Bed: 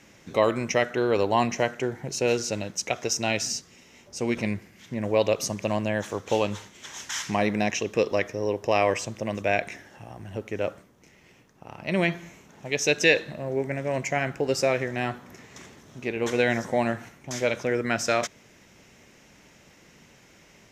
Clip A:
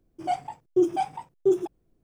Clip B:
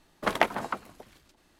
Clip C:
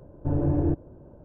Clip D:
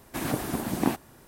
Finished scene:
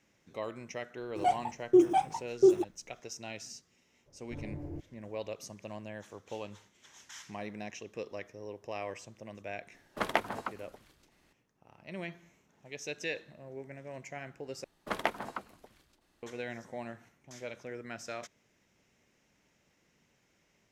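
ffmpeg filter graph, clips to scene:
-filter_complex "[2:a]asplit=2[a][b];[0:a]volume=-17dB[c];[1:a]bandreject=f=4.8k:w=8[d];[c]asplit=2[e][f];[e]atrim=end=14.644[g];[b]atrim=end=1.59,asetpts=PTS-STARTPTS,volume=-7.5dB[h];[f]atrim=start=16.226[i];[d]atrim=end=2.03,asetpts=PTS-STARTPTS,volume=-0.5dB,afade=t=in:d=0.004:c=hsin,afade=t=out:st=2.026:d=0.004:c=hsin,adelay=970[j];[3:a]atrim=end=1.24,asetpts=PTS-STARTPTS,volume=-18dB,afade=t=in:d=0.004:c=hsin,afade=t=out:st=1.236:d=0.004:c=hsin,adelay=4060[k];[a]atrim=end=1.59,asetpts=PTS-STARTPTS,volume=-5.5dB,afade=t=in:d=0.004:c=hsin,afade=t=out:st=1.586:d=0.004:c=hsin,adelay=9740[l];[g][h]acrossfade=d=0.004:c1=hsin:c2=hsin[m];[m][i]acrossfade=d=0.004:c1=hsin:c2=hsin[n];[n][j][k][l]amix=inputs=4:normalize=0"

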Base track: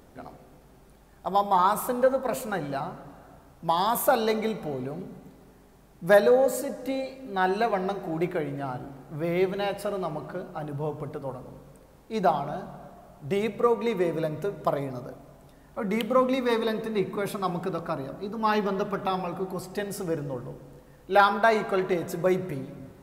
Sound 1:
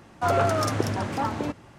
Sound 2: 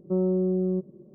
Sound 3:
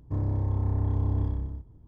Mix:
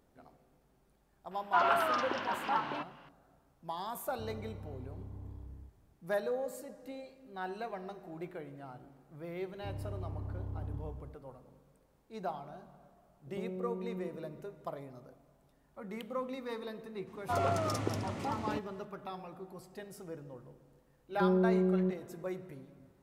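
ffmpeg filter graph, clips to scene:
-filter_complex "[1:a]asplit=2[a][b];[3:a]asplit=2[c][d];[2:a]asplit=2[e][f];[0:a]volume=-15.5dB[g];[a]highpass=390,equalizer=f=490:t=q:w=4:g=-10,equalizer=f=1k:t=q:w=4:g=8,equalizer=f=1.5k:t=q:w=4:g=6,equalizer=f=2.9k:t=q:w=4:g=8,lowpass=f=4.6k:w=0.5412,lowpass=f=4.6k:w=1.3066[h];[c]acompressor=threshold=-28dB:ratio=6:attack=3.2:release=140:knee=1:detection=peak[i];[e]acompressor=threshold=-37dB:ratio=6:attack=3.2:release=140:knee=1:detection=peak[j];[b]bandreject=f=1.6k:w=6.4[k];[h]atrim=end=1.78,asetpts=PTS-STARTPTS,volume=-7dB,afade=t=in:d=0.004:c=hsin,afade=t=out:st=1.776:d=0.004:c=hsin,adelay=1310[l];[i]atrim=end=1.87,asetpts=PTS-STARTPTS,volume=-14.5dB,afade=t=in:d=0.004:c=hsin,afade=t=out:st=1.866:d=0.004:c=hsin,adelay=4080[m];[d]atrim=end=1.87,asetpts=PTS-STARTPTS,volume=-14dB,afade=t=in:d=0.004:c=hsin,afade=t=out:st=1.866:d=0.004:c=hsin,adelay=9530[n];[j]atrim=end=1.14,asetpts=PTS-STARTPTS,volume=-2dB,afade=t=in:d=0.004:c=hsin,afade=t=out:st=1.136:d=0.004:c=hsin,adelay=13270[o];[k]atrim=end=1.78,asetpts=PTS-STARTPTS,volume=-9dB,afade=t=in:d=0.004:c=hsin,afade=t=out:st=1.776:d=0.004:c=hsin,adelay=17070[p];[f]atrim=end=1.14,asetpts=PTS-STARTPTS,volume=-4dB,afade=t=in:d=0.004:c=hsin,afade=t=out:st=1.136:d=0.004:c=hsin,adelay=21100[q];[g][l][m][n][o][p][q]amix=inputs=7:normalize=0"

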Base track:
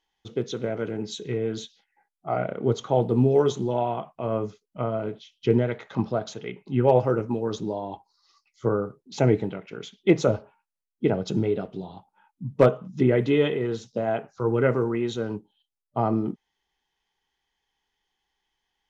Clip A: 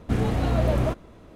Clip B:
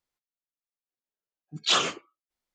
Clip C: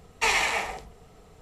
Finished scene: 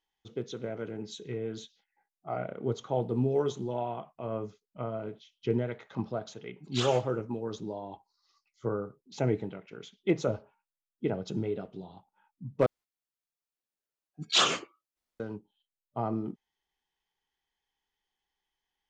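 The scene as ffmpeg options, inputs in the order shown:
-filter_complex "[2:a]asplit=2[a][b];[0:a]volume=-8dB[c];[a]asplit=2[d][e];[e]adelay=209.9,volume=-26dB,highshelf=f=4k:g=-4.72[f];[d][f]amix=inputs=2:normalize=0[g];[c]asplit=2[h][i];[h]atrim=end=12.664[j];[b]atrim=end=2.54,asetpts=PTS-STARTPTS,volume=-1dB[k];[i]atrim=start=15.196[l];[g]atrim=end=2.54,asetpts=PTS-STARTPTS,volume=-11.5dB,afade=t=in:d=0.004:c=hsin,afade=t=out:st=2.536:d=0.004:c=hsin,adelay=5080[m];[j][k]acrossfade=d=0.004:c1=hsin:c2=hsin[n];[n][l]acrossfade=d=0.004:c1=hsin:c2=hsin[o];[o][m]amix=inputs=2:normalize=0"

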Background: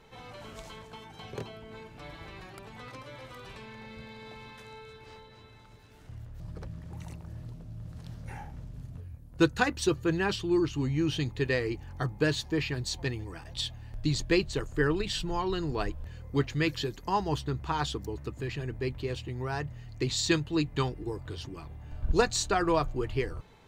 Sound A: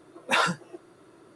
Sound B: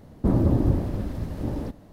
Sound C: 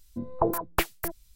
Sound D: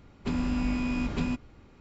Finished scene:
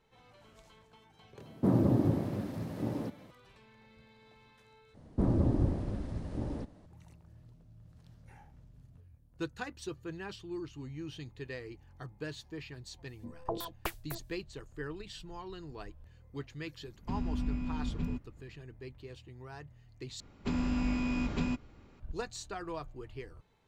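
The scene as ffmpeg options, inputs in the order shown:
-filter_complex "[2:a]asplit=2[a][b];[4:a]asplit=2[c][d];[0:a]volume=-14dB[e];[a]highpass=f=110:w=0.5412,highpass=f=110:w=1.3066[f];[b]aresample=22050,aresample=44100[g];[c]bass=f=250:g=12,treble=f=4k:g=-6[h];[e]asplit=3[i][j][k];[i]atrim=end=4.944[l];[g]atrim=end=1.92,asetpts=PTS-STARTPTS,volume=-7.5dB[m];[j]atrim=start=6.856:end=20.204[n];[d]atrim=end=1.8,asetpts=PTS-STARTPTS,volume=-3dB[o];[k]atrim=start=21.996[p];[f]atrim=end=1.92,asetpts=PTS-STARTPTS,volume=-4dB,afade=t=in:d=0.004:c=hsin,afade=t=out:st=1.916:d=0.004:c=hsin,adelay=1390[q];[3:a]atrim=end=1.35,asetpts=PTS-STARTPTS,volume=-11.5dB,afade=t=in:d=0.004:c=hsin,afade=t=out:st=1.346:d=0.004:c=hsin,adelay=13070[r];[h]atrim=end=1.8,asetpts=PTS-STARTPTS,volume=-14dB,afade=t=in:d=0.004:c=hsin,afade=t=out:st=1.796:d=0.004:c=hsin,adelay=16820[s];[l][m]acrossfade=d=0.004:c1=hsin:c2=hsin[t];[t][n]acrossfade=d=0.004:c1=hsin:c2=hsin[u];[u][o]acrossfade=d=0.004:c1=hsin:c2=hsin[v];[v][p]acrossfade=d=0.004:c1=hsin:c2=hsin[w];[w][q][r][s]amix=inputs=4:normalize=0"

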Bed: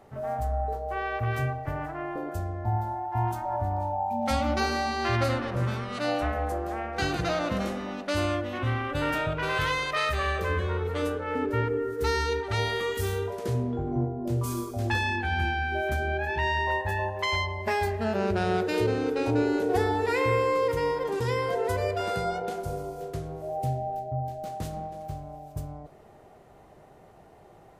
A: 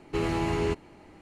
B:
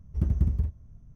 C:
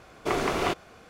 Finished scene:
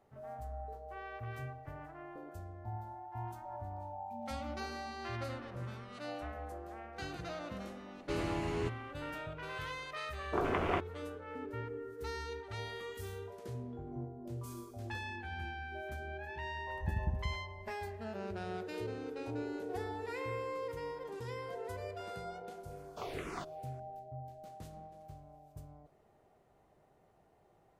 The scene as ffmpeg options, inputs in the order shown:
-filter_complex "[3:a]asplit=2[a][b];[0:a]volume=-15dB[c];[a]afwtdn=0.0282[d];[2:a]acrossover=split=580[e][f];[e]adelay=100[g];[g][f]amix=inputs=2:normalize=0[h];[b]asplit=2[i][j];[j]afreqshift=-2.1[k];[i][k]amix=inputs=2:normalize=1[l];[1:a]atrim=end=1.21,asetpts=PTS-STARTPTS,volume=-9dB,afade=t=in:d=0.004:c=hsin,afade=t=out:st=1.206:d=0.004:c=hsin,adelay=7950[m];[d]atrim=end=1.09,asetpts=PTS-STARTPTS,volume=-6dB,afade=t=in:d=0.004:c=hsin,afade=t=out:st=1.086:d=0.004:c=hsin,adelay=10070[n];[h]atrim=end=1.15,asetpts=PTS-STARTPTS,volume=-11.5dB,afade=t=in:d=0.004:c=hsin,afade=t=out:st=1.146:d=0.004:c=hsin,adelay=16560[o];[l]atrim=end=1.09,asetpts=PTS-STARTPTS,volume=-13dB,afade=t=in:d=0.004:c=hsin,afade=t=out:st=1.086:d=0.004:c=hsin,adelay=22710[p];[c][m][n][o][p]amix=inputs=5:normalize=0"

